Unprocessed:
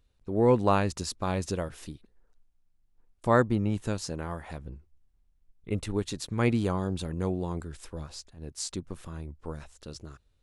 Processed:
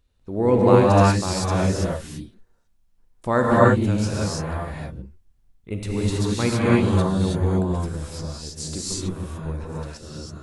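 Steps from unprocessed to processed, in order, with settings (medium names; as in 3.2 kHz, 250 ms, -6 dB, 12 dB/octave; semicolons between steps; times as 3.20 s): gated-style reverb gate 350 ms rising, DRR -6 dB; trim +1 dB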